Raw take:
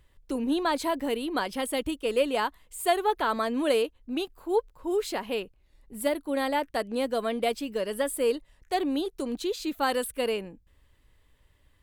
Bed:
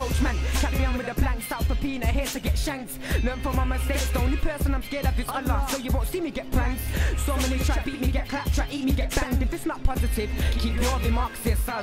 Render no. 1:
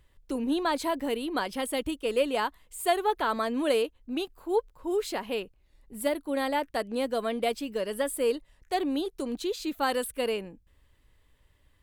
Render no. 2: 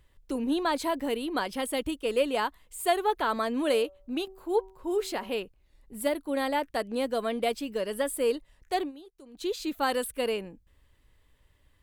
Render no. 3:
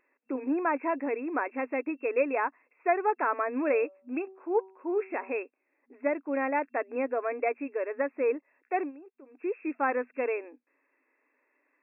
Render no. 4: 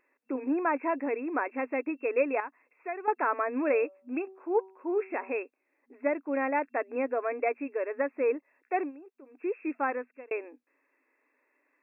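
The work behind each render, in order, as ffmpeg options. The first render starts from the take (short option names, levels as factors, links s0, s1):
-af "volume=0.891"
-filter_complex "[0:a]asettb=1/sr,asplit=3[s0][s1][s2];[s0]atrim=end=3.644[s3];[s1]atrim=start=3.64:end=5.37,asetpts=PTS-STARTPTS,afade=t=in:d=0.004:c=qsin,afade=t=out:st=1.726:d=0.004:c=qsin,bandreject=f=190.8:t=h:w=4,bandreject=f=381.6:t=h:w=4,bandreject=f=572.4:t=h:w=4,bandreject=f=763.2:t=h:w=4,bandreject=f=954:t=h:w=4,bandreject=f=1144.8:t=h:w=4,bandreject=f=1335.6:t=h:w=4[s4];[s2]atrim=start=5.366[s5];[s3][s4]acrossfade=d=0.004:c1=hsin:c2=qsin[s6];[s6][s5]acrossfade=d=0.004:c1=qsin:c2=hsin,asplit=3[s7][s8][s9];[s7]atrim=end=8.92,asetpts=PTS-STARTPTS,afade=t=out:st=8.8:d=0.12:silence=0.125893[s10];[s8]atrim=start=8.92:end=9.34,asetpts=PTS-STARTPTS,volume=0.126[s11];[s9]atrim=start=9.34,asetpts=PTS-STARTPTS,afade=t=in:d=0.12:silence=0.125893[s12];[s10][s11][s12]concat=n=3:v=0:a=1"
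-af "afftfilt=real='re*between(b*sr/4096,240,2700)':imag='im*between(b*sr/4096,240,2700)':win_size=4096:overlap=0.75,aemphasis=mode=production:type=75fm"
-filter_complex "[0:a]asettb=1/sr,asplit=3[s0][s1][s2];[s0]atrim=end=2.404[s3];[s1]atrim=start=2.4:end=3.08,asetpts=PTS-STARTPTS,afade=t=in:d=0.004:c=qsin,afade=t=out:st=0.676:d=0.004:c=qsin,acrossover=split=150|3000[s4][s5][s6];[s5]acompressor=threshold=0.00251:ratio=1.5:attack=3.2:release=140:knee=2.83:detection=peak[s7];[s4][s7][s6]amix=inputs=3:normalize=0[s8];[s2]atrim=start=3.076[s9];[s3][s8]acrossfade=d=0.004:c1=hsin:c2=qsin[s10];[s10][s9]acrossfade=d=0.004:c1=qsin:c2=hsin,asplit=2[s11][s12];[s11]atrim=end=10.31,asetpts=PTS-STARTPTS,afade=t=out:st=9.74:d=0.57[s13];[s12]atrim=start=10.31,asetpts=PTS-STARTPTS,afade=t=in:d=0.004:c=hsin[s14];[s13][s14]concat=n=2:v=0:a=1"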